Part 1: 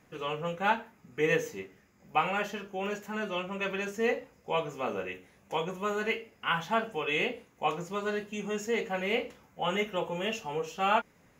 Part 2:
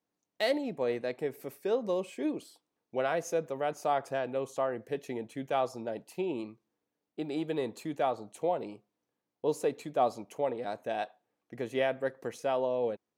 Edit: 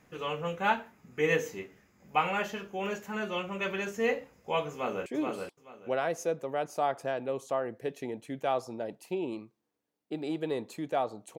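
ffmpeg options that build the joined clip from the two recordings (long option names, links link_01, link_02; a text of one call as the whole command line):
ffmpeg -i cue0.wav -i cue1.wav -filter_complex "[0:a]apad=whole_dur=11.38,atrim=end=11.38,atrim=end=5.062[link_01];[1:a]atrim=start=2.128:end=8.45[link_02];[link_01][link_02]acrossfade=duration=0.004:curve1=hsin:curve2=hsin,asplit=2[link_03][link_04];[link_04]afade=type=in:start_time=4.71:duration=0.01,afade=type=out:start_time=5.06:duration=0.01,aecho=0:1:430|860|1290:0.668344|0.133669|0.0267338[link_05];[link_03][link_05]amix=inputs=2:normalize=0" out.wav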